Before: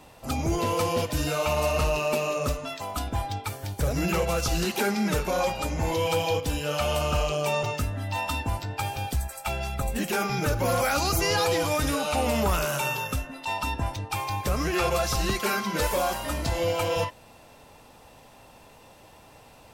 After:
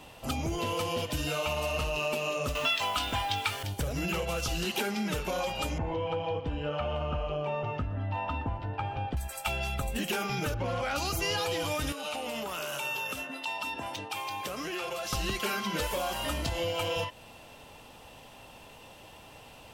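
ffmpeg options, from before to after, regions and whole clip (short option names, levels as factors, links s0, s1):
-filter_complex "[0:a]asettb=1/sr,asplit=3[s0][s1][s2];[s0]atrim=end=2.554[s3];[s1]atrim=start=2.55:end=3.63,asetpts=PTS-STARTPTS,afade=t=in:d=0.004:c=qsin,afade=t=out:st=1.076:d=0.004:c=qsin,equalizer=f=2500:w=0.31:g=14.5,asplit=2[s4][s5];[s5]adelay=20,volume=0.422[s6];[s4][s6]amix=inputs=2:normalize=0,atrim=end_sample=47628,acrusher=bits=7:dc=4:mix=0:aa=0.000001[s7];[s2]atrim=start=3.626[s8];[s3][s7]acrossfade=d=0.004:c1=hsin:c2=qsin[s9];[s9][s8]acrossfade=d=0.004:c1=qsin:c2=hsin,asettb=1/sr,asplit=3[s10][s11][s12];[s10]atrim=end=5.784[s13];[s11]atrim=start=5.78:end=9.17,asetpts=PTS-STARTPTS,afade=t=in:d=0.004:c=qsin,afade=t=out:st=3.386:d=0.004:c=qsin,lowpass=1500,aecho=1:1:120:0.15,atrim=end_sample=149499[s14];[s12]atrim=start=9.166[s15];[s13][s14]acrossfade=d=0.004:c1=hsin:c2=qsin[s16];[s16][s15]acrossfade=d=0.004:c1=qsin:c2=hsin,asettb=1/sr,asplit=3[s17][s18][s19];[s17]atrim=end=10.544[s20];[s18]atrim=start=10.54:end=10.96,asetpts=PTS-STARTPTS,afade=t=in:d=0.004:c=qsin,afade=t=out:st=0.416:d=0.004:c=qsin,equalizer=f=72:w=1.5:g=6,adynamicsmooth=sensitivity=1.5:basefreq=3200[s21];[s19]atrim=start=10.956[s22];[s20][s21]acrossfade=d=0.004:c1=hsin:c2=qsin[s23];[s23][s22]acrossfade=d=0.004:c1=qsin:c2=hsin,asettb=1/sr,asplit=3[s24][s25][s26];[s24]atrim=end=11.924[s27];[s25]atrim=start=11.92:end=15.13,asetpts=PTS-STARTPTS,afade=t=in:d=0.004:c=qsin,afade=t=out:st=3.206:d=0.004:c=qsin,highpass=230,acompressor=threshold=0.0224:ratio=6:attack=3.2:release=140:knee=1:detection=peak[s28];[s26]atrim=start=15.126[s29];[s27][s28]acrossfade=d=0.004:c1=hsin:c2=qsin[s30];[s30][s29]acrossfade=d=0.004:c1=qsin:c2=hsin,acompressor=threshold=0.0355:ratio=6,equalizer=f=3000:t=o:w=0.4:g=8.5"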